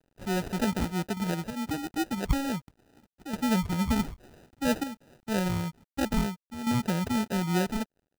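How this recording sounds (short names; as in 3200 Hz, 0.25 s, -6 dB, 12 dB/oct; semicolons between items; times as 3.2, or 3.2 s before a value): chopped level 0.6 Hz, depth 65%, duty 90%; a quantiser's noise floor 10-bit, dither none; phasing stages 12, 3.2 Hz, lowest notch 600–1200 Hz; aliases and images of a low sample rate 1100 Hz, jitter 0%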